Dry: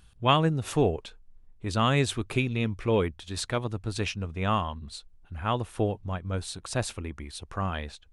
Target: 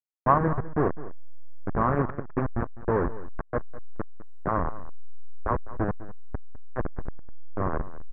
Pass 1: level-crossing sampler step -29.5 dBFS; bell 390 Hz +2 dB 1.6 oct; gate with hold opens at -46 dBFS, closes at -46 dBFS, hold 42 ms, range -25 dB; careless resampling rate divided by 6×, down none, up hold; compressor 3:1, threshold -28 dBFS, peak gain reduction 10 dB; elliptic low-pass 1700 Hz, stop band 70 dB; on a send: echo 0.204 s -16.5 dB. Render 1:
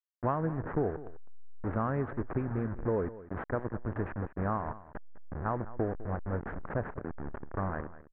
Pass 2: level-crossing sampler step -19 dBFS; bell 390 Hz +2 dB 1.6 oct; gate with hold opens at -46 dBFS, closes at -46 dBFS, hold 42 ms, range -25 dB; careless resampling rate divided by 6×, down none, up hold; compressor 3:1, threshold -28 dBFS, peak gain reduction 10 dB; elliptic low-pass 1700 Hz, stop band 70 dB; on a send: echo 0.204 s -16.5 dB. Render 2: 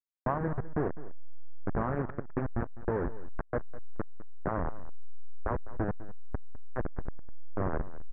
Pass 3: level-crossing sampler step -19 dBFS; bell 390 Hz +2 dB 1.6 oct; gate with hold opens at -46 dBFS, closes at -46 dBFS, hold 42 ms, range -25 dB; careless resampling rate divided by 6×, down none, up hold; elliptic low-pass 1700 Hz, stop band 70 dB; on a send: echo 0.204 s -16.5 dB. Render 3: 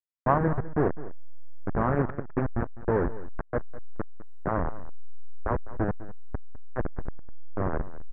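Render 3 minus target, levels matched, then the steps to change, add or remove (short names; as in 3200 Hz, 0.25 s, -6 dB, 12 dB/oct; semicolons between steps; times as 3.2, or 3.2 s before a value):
1000 Hz band -2.0 dB
add after elliptic low-pass: dynamic EQ 1100 Hz, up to +7 dB, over -46 dBFS, Q 4.7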